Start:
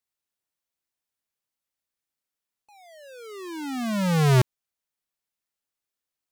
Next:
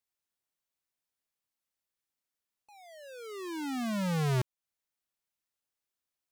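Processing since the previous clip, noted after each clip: compression 2:1, threshold -33 dBFS, peak gain reduction 9 dB; trim -2.5 dB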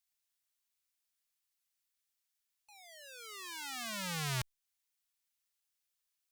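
amplifier tone stack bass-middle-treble 10-0-10; trim +5 dB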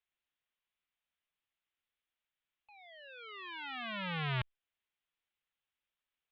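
steep low-pass 3.5 kHz 48 dB/octave; trim +2 dB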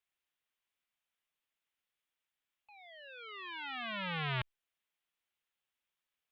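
bass shelf 180 Hz -5 dB; trim +1 dB

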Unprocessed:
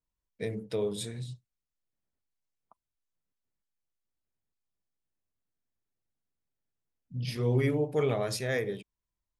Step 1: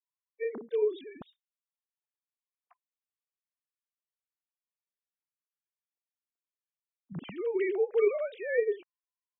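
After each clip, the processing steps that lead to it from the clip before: formants replaced by sine waves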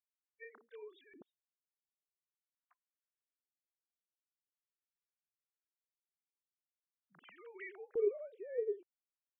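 treble shelf 2.9 kHz +7.5 dB; LFO band-pass square 0.44 Hz 370–1500 Hz; trim -6 dB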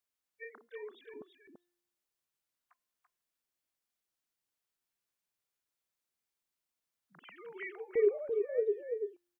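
feedback comb 350 Hz, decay 0.97 s, mix 30%; on a send: delay 337 ms -5.5 dB; on the sum: trim +8.5 dB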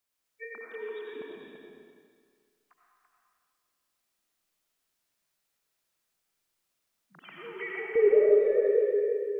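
reverberation RT60 1.9 s, pre-delay 50 ms, DRR -3.5 dB; trim +4.5 dB

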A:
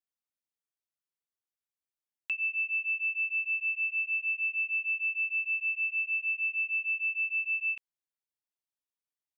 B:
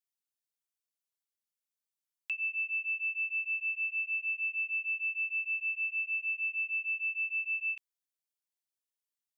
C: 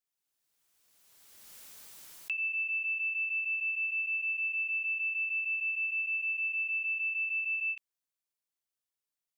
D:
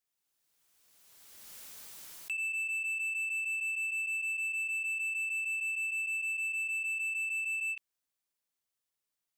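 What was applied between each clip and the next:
treble shelf 2.4 kHz +11.5 dB; trim -9 dB
swell ahead of each attack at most 26 dB/s
saturation -34 dBFS, distortion -15 dB; trim +2.5 dB

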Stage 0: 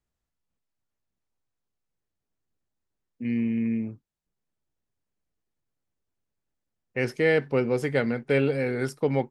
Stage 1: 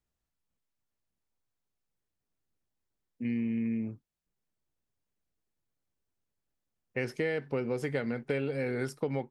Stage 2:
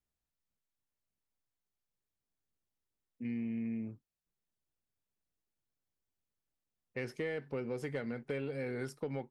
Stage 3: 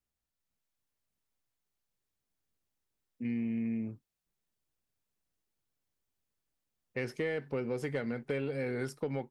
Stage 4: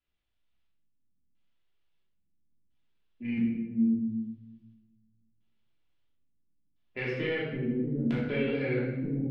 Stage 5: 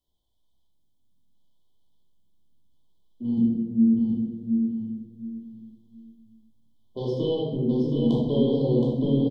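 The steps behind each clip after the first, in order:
compression, threshold -26 dBFS, peak gain reduction 9 dB; trim -2 dB
saturation -19.5 dBFS, distortion -25 dB; trim -5.5 dB
level rider gain up to 3.5 dB
LFO low-pass square 0.74 Hz 230–3200 Hz; simulated room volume 480 m³, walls mixed, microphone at 3 m; trim -4.5 dB
brick-wall FIR band-stop 1.1–3 kHz; feedback delay 721 ms, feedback 25%, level -5 dB; trim +6.5 dB

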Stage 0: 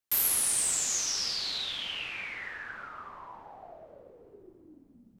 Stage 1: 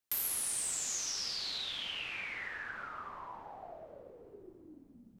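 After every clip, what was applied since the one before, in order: compression 2:1, threshold -39 dBFS, peak gain reduction 9 dB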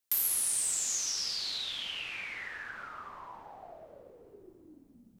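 treble shelf 3.8 kHz +7 dB; trim -1 dB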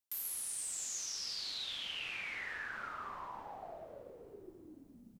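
reverse; compression 6:1, threshold -40 dBFS, peak gain reduction 14 dB; reverse; doubling 41 ms -10.5 dB; trim +1 dB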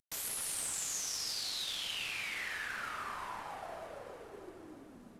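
CVSD coder 64 kbps; echo whose repeats swap between lows and highs 158 ms, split 2 kHz, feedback 80%, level -8.5 dB; trim +2 dB

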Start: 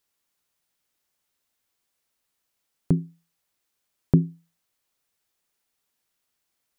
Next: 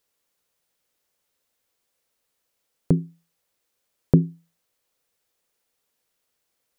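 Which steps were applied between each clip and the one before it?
peaking EQ 500 Hz +7.5 dB 0.52 oct; trim +1.5 dB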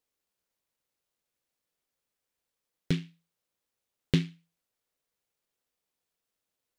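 delay time shaken by noise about 2.7 kHz, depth 0.18 ms; trim -8.5 dB

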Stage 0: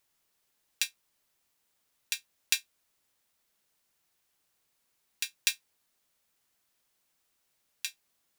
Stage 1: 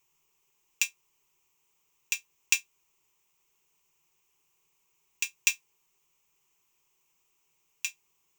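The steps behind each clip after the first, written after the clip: rippled EQ curve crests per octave 0.73, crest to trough 13 dB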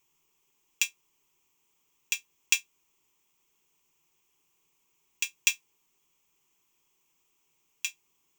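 small resonant body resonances 260/3300 Hz, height 10 dB, ringing for 45 ms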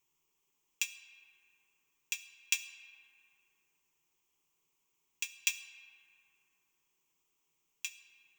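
reverberation RT60 3.3 s, pre-delay 25 ms, DRR 11 dB; trim -7 dB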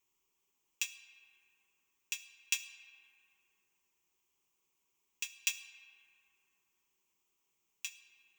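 comb of notches 150 Hz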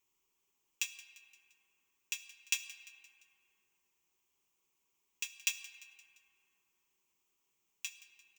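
feedback delay 173 ms, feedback 52%, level -19 dB

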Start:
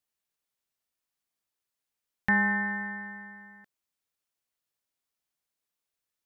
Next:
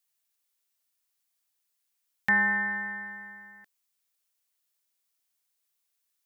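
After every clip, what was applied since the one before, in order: tilt EQ +2.5 dB/octave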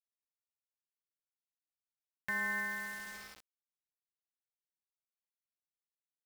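comb 1.9 ms, depth 78%; peak limiter -21 dBFS, peak gain reduction 7 dB; bit crusher 7-bit; trim -6 dB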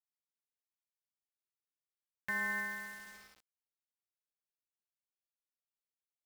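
upward expansion 1.5:1, over -53 dBFS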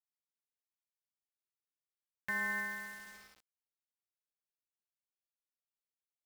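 no audible change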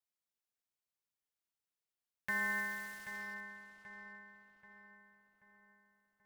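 filtered feedback delay 783 ms, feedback 51%, low-pass 2.4 kHz, level -7.5 dB

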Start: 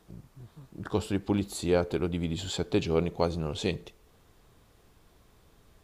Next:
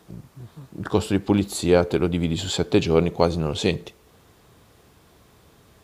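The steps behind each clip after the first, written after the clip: high-pass 71 Hz; trim +8 dB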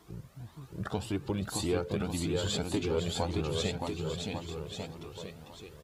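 compression 2.5:1, threshold -27 dBFS, peak gain reduction 10.5 dB; bouncing-ball echo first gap 620 ms, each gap 0.85×, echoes 5; Shepard-style flanger rising 1.8 Hz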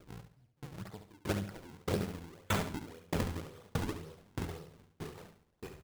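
decimation with a swept rate 42×, swing 160% 1.9 Hz; feedback delay 70 ms, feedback 47%, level -5 dB; sawtooth tremolo in dB decaying 1.6 Hz, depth 36 dB; trim +3 dB

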